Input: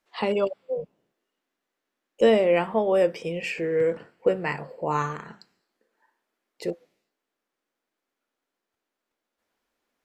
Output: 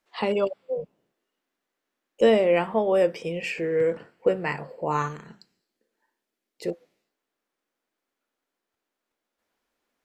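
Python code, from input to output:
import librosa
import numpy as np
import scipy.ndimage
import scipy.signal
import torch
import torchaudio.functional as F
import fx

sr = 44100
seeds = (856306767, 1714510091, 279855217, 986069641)

y = fx.peak_eq(x, sr, hz=1100.0, db=-9.0, octaves=2.1, at=(5.08, 6.64))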